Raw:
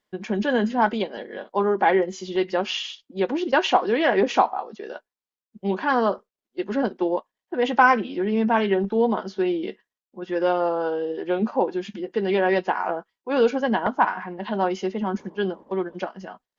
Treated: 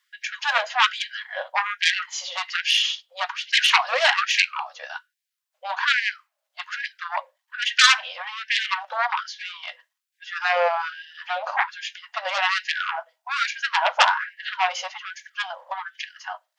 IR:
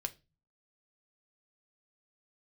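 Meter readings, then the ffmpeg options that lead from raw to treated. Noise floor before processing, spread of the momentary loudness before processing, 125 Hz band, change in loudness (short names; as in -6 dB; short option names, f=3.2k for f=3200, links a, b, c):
under -85 dBFS, 12 LU, under -40 dB, +1.0 dB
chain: -filter_complex "[0:a]aeval=exprs='0.708*(cos(1*acos(clip(val(0)/0.708,-1,1)))-cos(1*PI/2))+0.0891*(cos(3*acos(clip(val(0)/0.708,-1,1)))-cos(3*PI/2))+0.316*(cos(7*acos(clip(val(0)/0.708,-1,1)))-cos(7*PI/2))':c=same,lowshelf=f=410:g=-10.5,asplit=2[a][b];[1:a]atrim=start_sample=2205,asetrate=43218,aresample=44100[c];[b][c]afir=irnorm=-1:irlink=0,volume=-6.5dB[d];[a][d]amix=inputs=2:normalize=0,afftfilt=real='re*gte(b*sr/1024,490*pow(1600/490,0.5+0.5*sin(2*PI*1.2*pts/sr)))':imag='im*gte(b*sr/1024,490*pow(1600/490,0.5+0.5*sin(2*PI*1.2*pts/sr)))':win_size=1024:overlap=0.75,volume=-1dB"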